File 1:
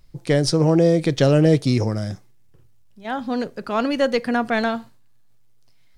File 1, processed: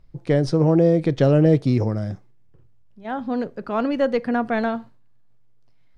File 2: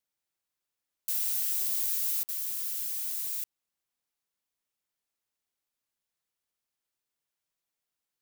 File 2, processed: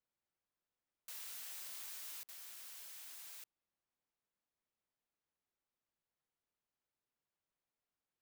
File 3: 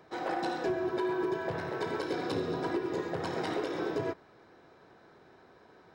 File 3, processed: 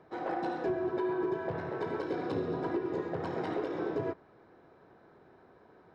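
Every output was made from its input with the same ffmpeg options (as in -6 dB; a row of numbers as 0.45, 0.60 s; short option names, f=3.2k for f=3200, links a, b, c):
-af "lowpass=f=1.3k:p=1"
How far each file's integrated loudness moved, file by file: -0.5, -19.0, -1.0 LU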